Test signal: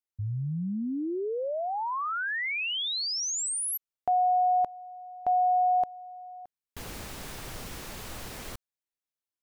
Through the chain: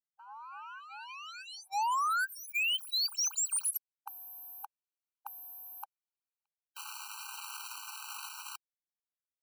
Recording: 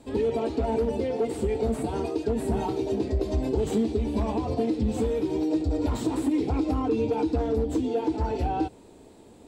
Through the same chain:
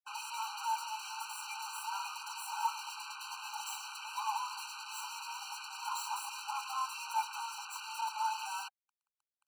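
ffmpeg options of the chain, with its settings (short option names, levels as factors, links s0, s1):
-af "acrusher=bits=5:mix=0:aa=0.5,afftfilt=real='re*eq(mod(floor(b*sr/1024/780),2),1)':imag='im*eq(mod(floor(b*sr/1024/780),2),1)':win_size=1024:overlap=0.75,volume=1.19"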